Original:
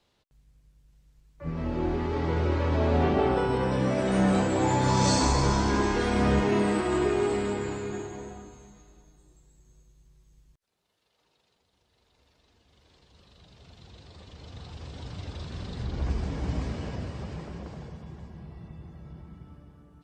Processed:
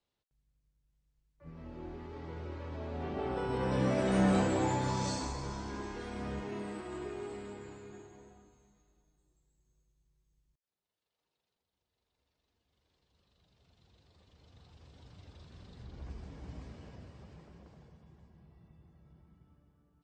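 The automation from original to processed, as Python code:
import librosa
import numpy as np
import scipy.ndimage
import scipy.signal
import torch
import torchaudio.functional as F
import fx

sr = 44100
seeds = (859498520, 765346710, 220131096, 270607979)

y = fx.gain(x, sr, db=fx.line((2.95, -16.5), (3.79, -4.0), (4.48, -4.0), (5.38, -16.0)))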